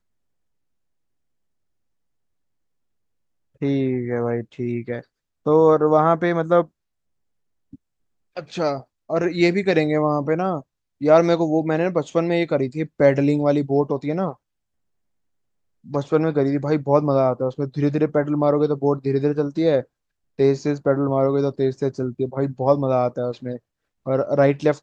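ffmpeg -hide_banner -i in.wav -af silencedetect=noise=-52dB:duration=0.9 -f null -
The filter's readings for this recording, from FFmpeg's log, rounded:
silence_start: 0.00
silence_end: 3.55 | silence_duration: 3.55
silence_start: 6.69
silence_end: 7.73 | silence_duration: 1.04
silence_start: 14.36
silence_end: 15.84 | silence_duration: 1.48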